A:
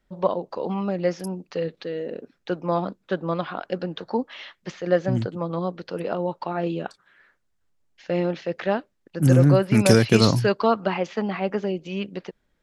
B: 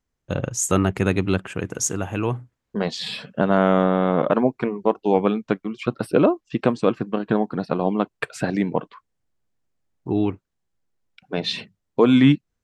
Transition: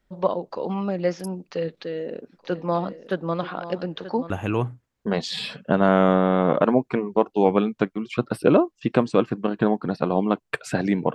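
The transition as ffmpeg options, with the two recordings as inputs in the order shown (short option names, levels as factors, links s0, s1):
-filter_complex "[0:a]asplit=3[s0][s1][s2];[s0]afade=t=out:st=2.32:d=0.02[s3];[s1]aecho=1:1:932|1864:0.224|0.047,afade=t=in:st=2.32:d=0.02,afade=t=out:st=4.3:d=0.02[s4];[s2]afade=t=in:st=4.3:d=0.02[s5];[s3][s4][s5]amix=inputs=3:normalize=0,apad=whole_dur=11.14,atrim=end=11.14,atrim=end=4.302[s6];[1:a]atrim=start=1.988:end=8.83[s7];[s6][s7]acrossfade=d=0.004:c1=hsin:c2=hsin"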